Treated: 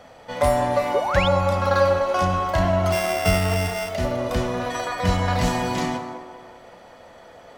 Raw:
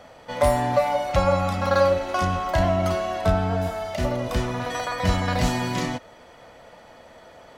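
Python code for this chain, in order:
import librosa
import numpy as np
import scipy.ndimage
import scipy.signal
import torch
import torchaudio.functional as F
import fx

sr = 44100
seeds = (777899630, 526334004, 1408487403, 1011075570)

p1 = fx.sample_sort(x, sr, block=16, at=(2.92, 3.89))
p2 = p1 + fx.echo_wet_bandpass(p1, sr, ms=195, feedback_pct=47, hz=700.0, wet_db=-5, dry=0)
p3 = fx.rev_gated(p2, sr, seeds[0], gate_ms=370, shape='falling', drr_db=10.0)
y = fx.spec_paint(p3, sr, seeds[1], shape='rise', start_s=0.94, length_s=0.34, low_hz=360.0, high_hz=3800.0, level_db=-26.0)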